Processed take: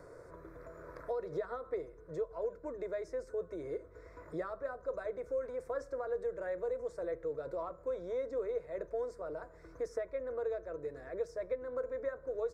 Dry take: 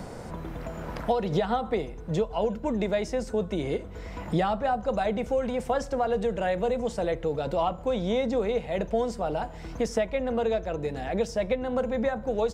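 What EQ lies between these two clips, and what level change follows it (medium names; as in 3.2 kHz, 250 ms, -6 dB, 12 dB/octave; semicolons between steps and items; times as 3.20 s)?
bass shelf 150 Hz -12 dB; treble shelf 2.4 kHz -11 dB; static phaser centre 800 Hz, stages 6; -7.0 dB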